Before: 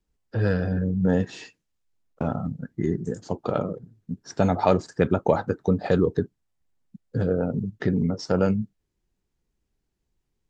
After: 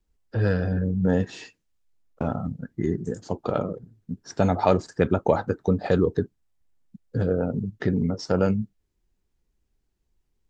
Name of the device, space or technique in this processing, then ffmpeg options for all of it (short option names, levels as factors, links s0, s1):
low shelf boost with a cut just above: -af "lowshelf=f=62:g=6.5,equalizer=f=150:t=o:w=0.76:g=-2.5"